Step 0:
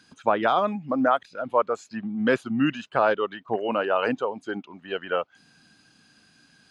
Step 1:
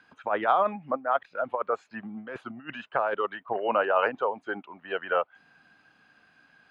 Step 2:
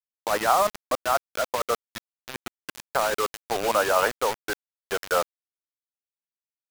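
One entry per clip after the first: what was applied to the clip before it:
low-shelf EQ 440 Hz +11.5 dB; compressor whose output falls as the input rises −19 dBFS, ratio −0.5; three-way crossover with the lows and the highs turned down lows −21 dB, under 570 Hz, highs −22 dB, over 2,700 Hz
bit reduction 5 bits; level +2 dB

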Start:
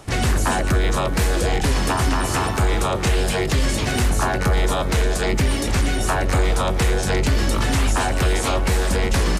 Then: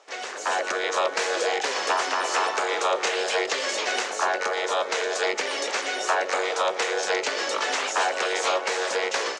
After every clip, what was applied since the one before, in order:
elliptic band-pass filter 470–6,700 Hz, stop band 60 dB
automatic gain control gain up to 10.5 dB
level −8.5 dB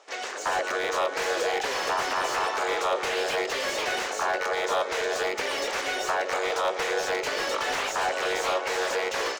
brickwall limiter −16.5 dBFS, peak gain reduction 5.5 dB
slew-rate limiting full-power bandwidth 120 Hz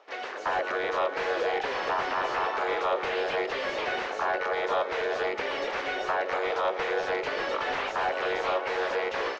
high-frequency loss of the air 240 metres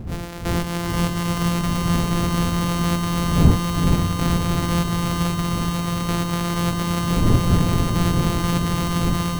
samples sorted by size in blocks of 256 samples
wind on the microphone 170 Hz −29 dBFS
feedback delay with all-pass diffusion 460 ms, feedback 59%, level −3.5 dB
level +3.5 dB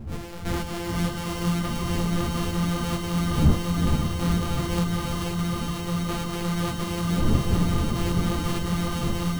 convolution reverb RT60 3.6 s, pre-delay 60 ms, DRR 13.5 dB
string-ensemble chorus
level −2 dB

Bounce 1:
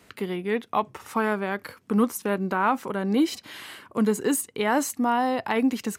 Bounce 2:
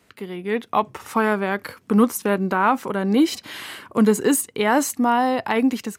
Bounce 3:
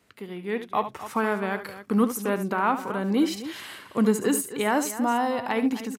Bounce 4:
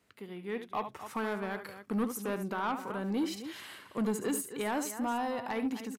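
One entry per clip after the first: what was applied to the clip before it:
automatic gain control gain up to 12 dB; level −4 dB
multi-tap delay 72/260 ms −11.5/−13.5 dB; level −5.5 dB
soft clipping −18 dBFS, distortion −15 dB; level −7 dB

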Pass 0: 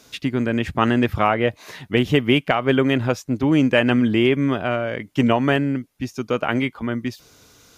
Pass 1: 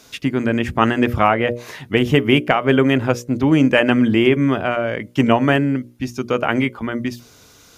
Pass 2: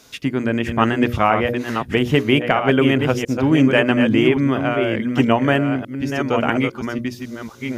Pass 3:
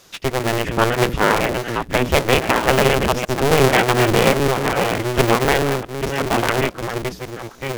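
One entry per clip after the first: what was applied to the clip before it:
mains-hum notches 60/120/180/240/300/360/420/480/540/600 Hz; dynamic equaliser 4,000 Hz, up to −7 dB, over −47 dBFS, Q 3.1; level +3.5 dB
delay that plays each chunk backwards 650 ms, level −6 dB; level −1.5 dB
sub-harmonics by changed cycles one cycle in 2, inverted

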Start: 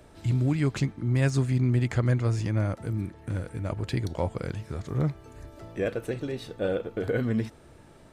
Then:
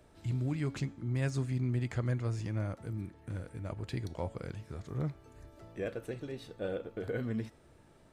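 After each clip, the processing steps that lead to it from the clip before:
hum removal 279 Hz, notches 35
level −8.5 dB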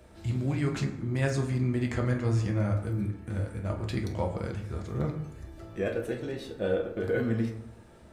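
convolution reverb RT60 0.75 s, pre-delay 7 ms, DRR 1.5 dB
level +5 dB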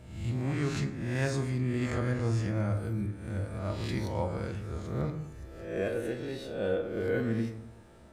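peak hold with a rise ahead of every peak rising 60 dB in 0.76 s
level −3.5 dB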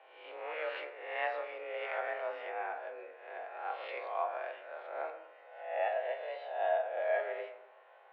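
single-sideband voice off tune +170 Hz 380–2,900 Hz

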